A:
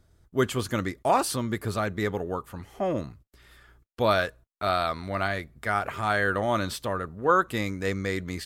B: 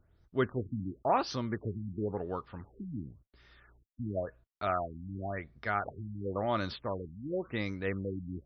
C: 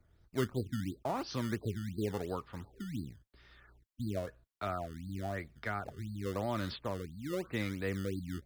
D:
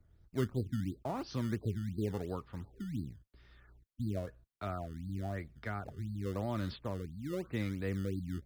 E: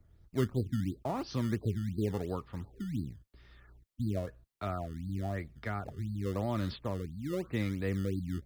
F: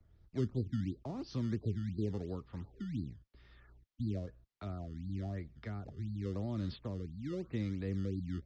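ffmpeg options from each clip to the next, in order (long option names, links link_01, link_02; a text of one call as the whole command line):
ffmpeg -i in.wav -af "afftfilt=real='re*lt(b*sr/1024,290*pow(6300/290,0.5+0.5*sin(2*PI*0.94*pts/sr)))':imag='im*lt(b*sr/1024,290*pow(6300/290,0.5+0.5*sin(2*PI*0.94*pts/sr)))':win_size=1024:overlap=0.75,volume=-5.5dB" out.wav
ffmpeg -i in.wav -filter_complex "[0:a]acrossover=split=320[link_01][link_02];[link_02]acompressor=threshold=-35dB:ratio=4[link_03];[link_01][link_03]amix=inputs=2:normalize=0,acrossover=split=410[link_04][link_05];[link_04]acrusher=samples=19:mix=1:aa=0.000001:lfo=1:lforange=19:lforate=2.9[link_06];[link_06][link_05]amix=inputs=2:normalize=0" out.wav
ffmpeg -i in.wav -af "lowshelf=frequency=340:gain=8,volume=-5dB" out.wav
ffmpeg -i in.wav -af "bandreject=frequency=1500:width=19,volume=3dB" out.wav
ffmpeg -i in.wav -filter_complex "[0:a]lowpass=frequency=5800:width=0.5412,lowpass=frequency=5800:width=1.3066,acrossover=split=260|430|4200[link_01][link_02][link_03][link_04];[link_03]acompressor=threshold=-49dB:ratio=6[link_05];[link_01][link_02][link_05][link_04]amix=inputs=4:normalize=0,volume=-3dB" out.wav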